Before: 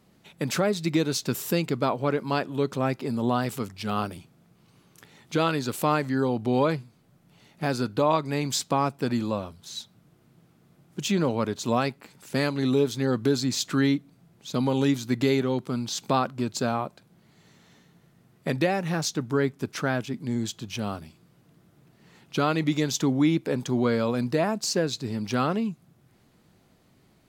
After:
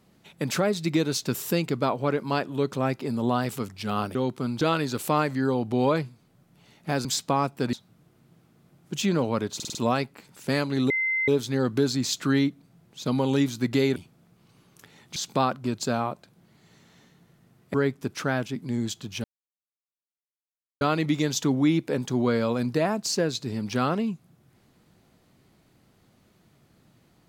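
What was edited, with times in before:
4.15–5.35 swap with 15.44–15.9
7.79–8.47 cut
9.15–9.79 cut
11.61 stutter 0.05 s, 5 plays
12.76 add tone 2070 Hz -22.5 dBFS 0.38 s
18.48–19.32 cut
20.82–22.39 mute

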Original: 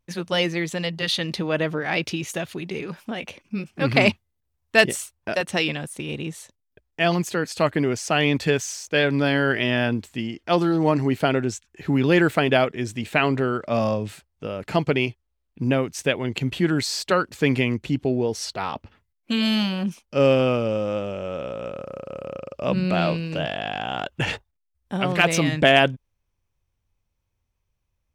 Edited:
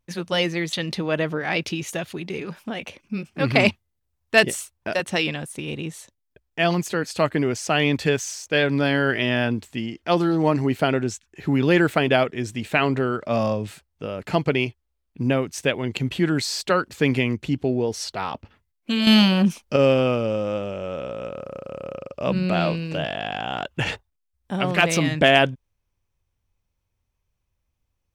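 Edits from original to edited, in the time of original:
0.73–1.14 cut
19.48–20.17 gain +7.5 dB

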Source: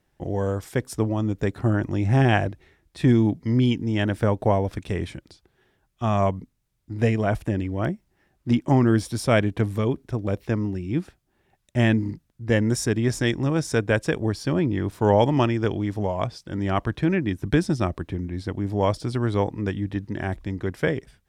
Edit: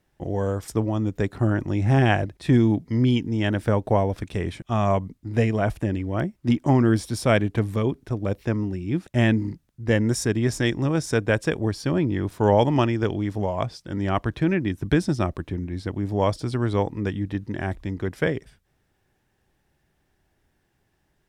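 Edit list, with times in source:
shorten pauses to 0.12 s

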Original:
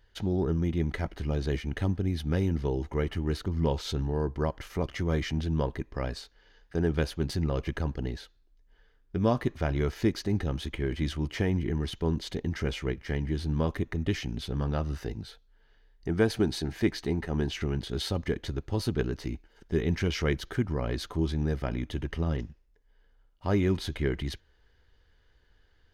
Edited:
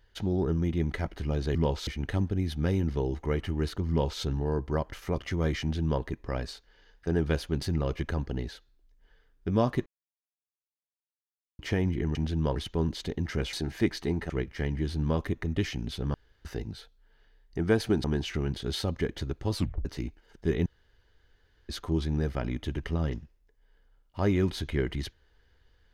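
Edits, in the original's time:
3.57–3.89 copy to 1.55
5.29–5.7 copy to 11.83
9.54–11.27 mute
14.64–14.95 room tone
16.54–17.31 move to 12.8
18.83 tape stop 0.29 s
19.93–20.96 room tone

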